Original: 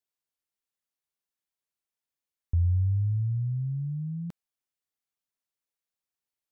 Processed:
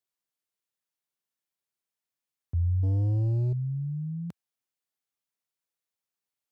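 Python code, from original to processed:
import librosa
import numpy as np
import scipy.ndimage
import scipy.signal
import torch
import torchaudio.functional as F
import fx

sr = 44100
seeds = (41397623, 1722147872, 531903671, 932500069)

y = scipy.signal.sosfilt(scipy.signal.butter(4, 81.0, 'highpass', fs=sr, output='sos'), x)
y = fx.leveller(y, sr, passes=2, at=(2.83, 3.53))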